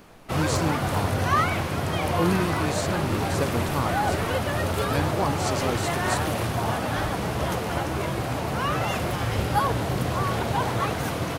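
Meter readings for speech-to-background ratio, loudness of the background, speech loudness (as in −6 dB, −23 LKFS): −4.5 dB, −26.0 LKFS, −30.5 LKFS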